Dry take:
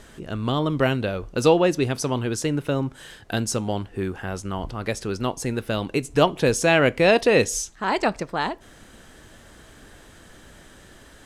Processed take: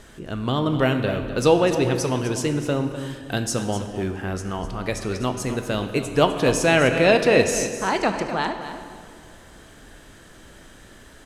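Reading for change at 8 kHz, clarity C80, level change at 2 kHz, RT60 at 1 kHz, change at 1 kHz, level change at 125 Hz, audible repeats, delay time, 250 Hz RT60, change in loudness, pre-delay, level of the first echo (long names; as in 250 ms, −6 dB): +0.5 dB, 7.5 dB, +1.0 dB, 2.2 s, +1.0 dB, +1.0 dB, 1, 253 ms, 2.5 s, +1.0 dB, 12 ms, −11.5 dB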